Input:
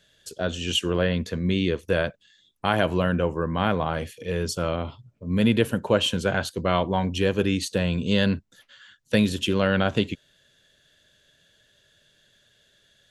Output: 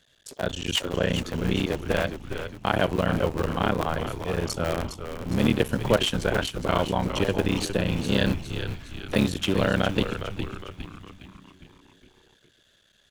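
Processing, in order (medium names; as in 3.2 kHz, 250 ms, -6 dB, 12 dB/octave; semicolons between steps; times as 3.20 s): cycle switcher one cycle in 3, muted; frequency-shifting echo 410 ms, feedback 50%, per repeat -94 Hz, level -8.5 dB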